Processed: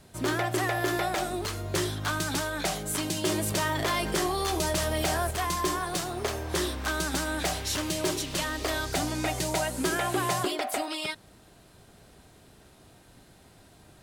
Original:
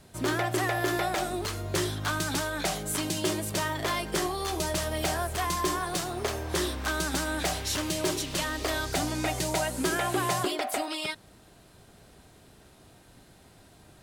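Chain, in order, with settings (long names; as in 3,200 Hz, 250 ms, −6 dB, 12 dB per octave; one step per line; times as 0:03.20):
0:03.26–0:05.31: envelope flattener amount 50%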